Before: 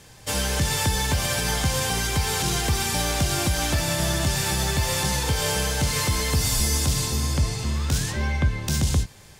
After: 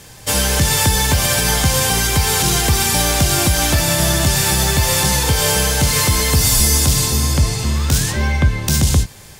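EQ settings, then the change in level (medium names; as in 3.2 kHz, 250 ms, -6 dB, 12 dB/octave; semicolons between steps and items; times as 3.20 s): treble shelf 11 kHz +8.5 dB; +7.5 dB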